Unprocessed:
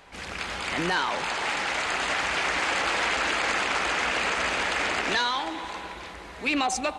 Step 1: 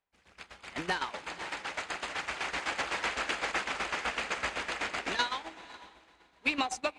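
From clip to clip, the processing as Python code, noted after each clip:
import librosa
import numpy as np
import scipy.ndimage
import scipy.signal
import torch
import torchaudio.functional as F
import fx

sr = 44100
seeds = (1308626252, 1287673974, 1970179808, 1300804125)

y = fx.tremolo_shape(x, sr, shape='saw_down', hz=7.9, depth_pct=65)
y = fx.echo_diffused(y, sr, ms=529, feedback_pct=48, wet_db=-9)
y = fx.upward_expand(y, sr, threshold_db=-48.0, expansion=2.5)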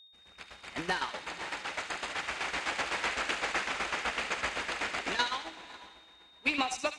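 y = x + 10.0 ** (-54.0 / 20.0) * np.sin(2.0 * np.pi * 3700.0 * np.arange(len(x)) / sr)
y = fx.echo_wet_highpass(y, sr, ms=71, feedback_pct=55, hz=1900.0, wet_db=-8.0)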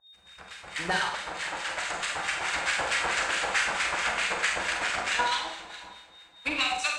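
y = fx.graphic_eq_31(x, sr, hz=(250, 400, 1600, 8000), db=(-11, -7, 4, 7))
y = fx.harmonic_tremolo(y, sr, hz=4.6, depth_pct=100, crossover_hz=1300.0)
y = fx.rev_schroeder(y, sr, rt60_s=0.56, comb_ms=32, drr_db=1.5)
y = F.gain(torch.from_numpy(y), 7.5).numpy()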